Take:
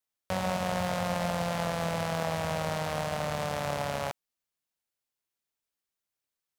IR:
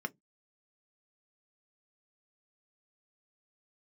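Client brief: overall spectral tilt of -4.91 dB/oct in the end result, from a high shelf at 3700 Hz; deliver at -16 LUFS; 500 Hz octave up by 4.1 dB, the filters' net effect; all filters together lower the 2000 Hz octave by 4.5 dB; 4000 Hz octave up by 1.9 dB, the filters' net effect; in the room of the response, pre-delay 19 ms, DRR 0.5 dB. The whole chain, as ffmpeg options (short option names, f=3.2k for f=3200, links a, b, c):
-filter_complex "[0:a]equalizer=f=500:t=o:g=5.5,equalizer=f=2k:t=o:g=-7,highshelf=f=3.7k:g=-4.5,equalizer=f=4k:t=o:g=7.5,asplit=2[a][b];[1:a]atrim=start_sample=2205,adelay=19[c];[b][c]afir=irnorm=-1:irlink=0,volume=-3dB[d];[a][d]amix=inputs=2:normalize=0,volume=12dB"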